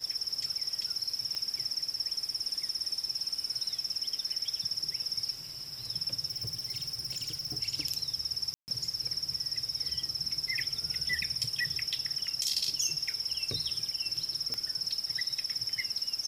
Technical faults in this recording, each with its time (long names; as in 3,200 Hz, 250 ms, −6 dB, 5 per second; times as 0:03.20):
0:01.35: click −22 dBFS
0:06.30–0:07.58: clipping −31.5 dBFS
0:08.54–0:08.68: drop-out 139 ms
0:14.54: click −19 dBFS